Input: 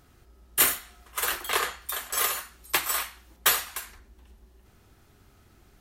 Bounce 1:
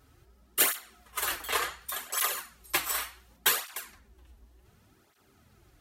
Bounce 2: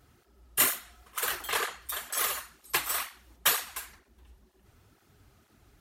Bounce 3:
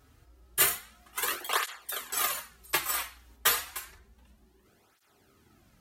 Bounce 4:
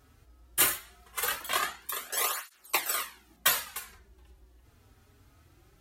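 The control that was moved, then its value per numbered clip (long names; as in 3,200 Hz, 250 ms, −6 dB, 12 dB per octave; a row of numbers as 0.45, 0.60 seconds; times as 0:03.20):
through-zero flanger with one copy inverted, nulls at: 0.68, 2.1, 0.3, 0.2 Hertz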